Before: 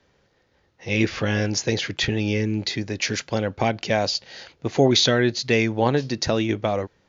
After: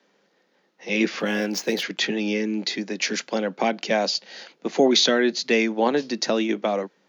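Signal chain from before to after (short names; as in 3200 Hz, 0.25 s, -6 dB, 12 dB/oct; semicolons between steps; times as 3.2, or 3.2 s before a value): 1.2–1.83 median filter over 5 samples; steep high-pass 170 Hz 72 dB/oct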